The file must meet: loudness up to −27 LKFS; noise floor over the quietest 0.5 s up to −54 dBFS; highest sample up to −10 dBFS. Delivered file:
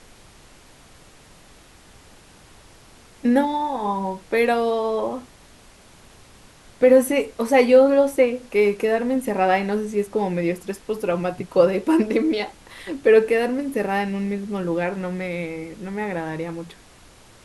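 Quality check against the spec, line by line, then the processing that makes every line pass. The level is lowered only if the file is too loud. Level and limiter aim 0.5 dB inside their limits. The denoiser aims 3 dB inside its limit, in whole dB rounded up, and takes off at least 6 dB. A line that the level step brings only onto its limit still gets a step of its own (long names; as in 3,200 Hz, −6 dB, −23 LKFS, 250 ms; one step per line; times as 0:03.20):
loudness −21.0 LKFS: out of spec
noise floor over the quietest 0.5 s −49 dBFS: out of spec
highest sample −4.0 dBFS: out of spec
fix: level −6.5 dB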